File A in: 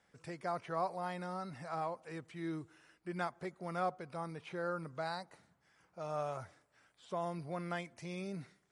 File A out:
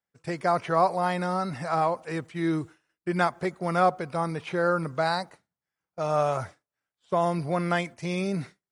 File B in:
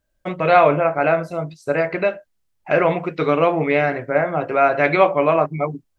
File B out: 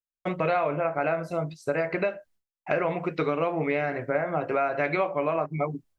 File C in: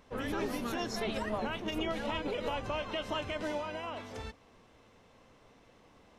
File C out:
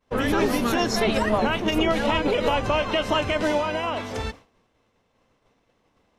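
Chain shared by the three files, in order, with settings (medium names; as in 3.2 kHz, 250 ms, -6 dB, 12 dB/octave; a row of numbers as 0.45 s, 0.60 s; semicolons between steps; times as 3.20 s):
expander -48 dBFS; dynamic bell 3.4 kHz, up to -5 dB, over -50 dBFS, Q 6; compression 5:1, threshold -21 dBFS; peak normalisation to -9 dBFS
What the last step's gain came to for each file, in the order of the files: +14.0 dB, -2.0 dB, +13.0 dB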